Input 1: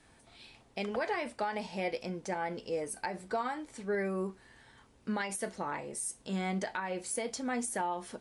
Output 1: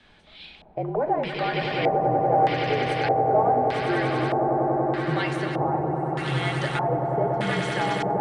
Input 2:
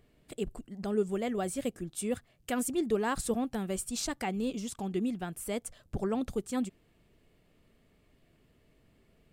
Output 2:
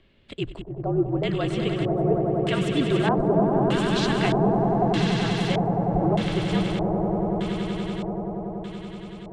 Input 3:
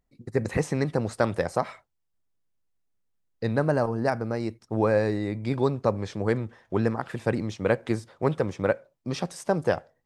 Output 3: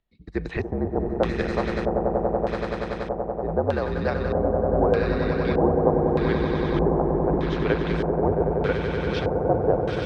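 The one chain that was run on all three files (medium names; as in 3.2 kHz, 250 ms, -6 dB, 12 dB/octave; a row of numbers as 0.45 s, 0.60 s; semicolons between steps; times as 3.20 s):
frequency shift -58 Hz; echo with a slow build-up 95 ms, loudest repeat 8, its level -7.5 dB; LFO low-pass square 0.81 Hz 760–3400 Hz; normalise loudness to -24 LUFS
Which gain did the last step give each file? +5.0 dB, +5.0 dB, -2.5 dB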